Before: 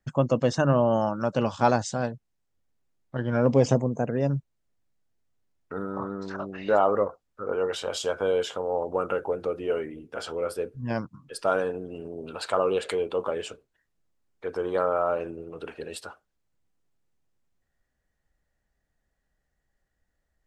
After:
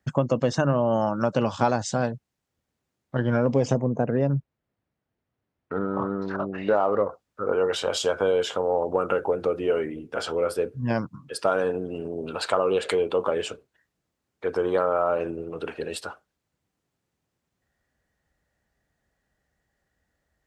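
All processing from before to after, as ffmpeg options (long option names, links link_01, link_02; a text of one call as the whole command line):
ffmpeg -i in.wav -filter_complex "[0:a]asettb=1/sr,asplit=3[link_01][link_02][link_03];[link_01]atrim=end=3.774[link_04];[link_02]atrim=start=3.77:end=7.02,asetpts=PTS-STARTPTS,afade=type=in:duration=0.004:curve=qsin,afade=type=out:start_time=3.246:duration=0.004:curve=qsin,highshelf=frequency=5100:gain=-12,adynamicsmooth=sensitivity=6.5:basefreq=5300[link_05];[link_03]atrim=start=7.016[link_06];[link_04][link_05]acrossfade=duration=0.004:curve1=hsin:curve2=qsin[link_07];[link_07][link_06]acrossfade=duration=0.004:curve1=qsin:curve2=hsin,highpass=65,highshelf=frequency=7800:gain=-4,acompressor=threshold=-24dB:ratio=4,volume=5.5dB" out.wav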